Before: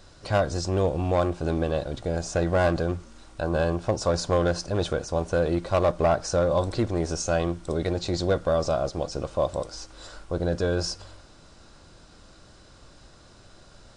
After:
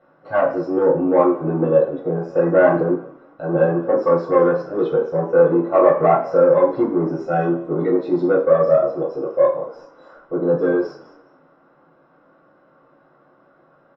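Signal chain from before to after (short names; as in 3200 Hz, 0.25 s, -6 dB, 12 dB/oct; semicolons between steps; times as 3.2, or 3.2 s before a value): bell 86 Hz -4 dB 0.44 oct; frequency-shifting echo 0.198 s, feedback 30%, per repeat -31 Hz, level -15 dB; spectral noise reduction 11 dB; soft clip -20.5 dBFS, distortion -15 dB; LPF 1300 Hz 12 dB/oct; reverb RT60 0.45 s, pre-delay 3 ms, DRR -5.5 dB; gain -3.5 dB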